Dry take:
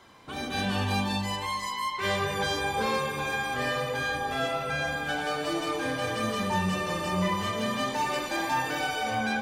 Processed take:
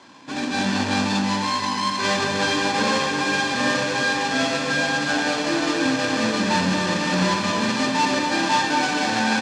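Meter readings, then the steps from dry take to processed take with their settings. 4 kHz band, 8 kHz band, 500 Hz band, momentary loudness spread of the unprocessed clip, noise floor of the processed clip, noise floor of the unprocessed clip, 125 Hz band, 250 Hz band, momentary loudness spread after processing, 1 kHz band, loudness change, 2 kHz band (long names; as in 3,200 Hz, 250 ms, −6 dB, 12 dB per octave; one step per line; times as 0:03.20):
+9.0 dB, +10.5 dB, +5.5 dB, 2 LU, −26 dBFS, −35 dBFS, +4.0 dB, +10.0 dB, 2 LU, +6.5 dB, +7.5 dB, +8.0 dB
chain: each half-wave held at its own peak
loudspeaker in its box 220–7,200 Hz, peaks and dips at 280 Hz +9 dB, 730 Hz −7 dB, 4,400 Hz +4 dB
comb filter 1.2 ms, depth 46%
delay that swaps between a low-pass and a high-pass 242 ms, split 1,400 Hz, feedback 86%, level −7.5 dB
level +2.5 dB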